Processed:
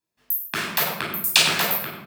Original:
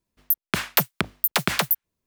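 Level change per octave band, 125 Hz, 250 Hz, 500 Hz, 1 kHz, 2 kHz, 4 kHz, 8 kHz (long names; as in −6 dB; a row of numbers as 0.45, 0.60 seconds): −3.5, −2.5, +1.0, +1.0, +3.5, +7.0, +5.0 decibels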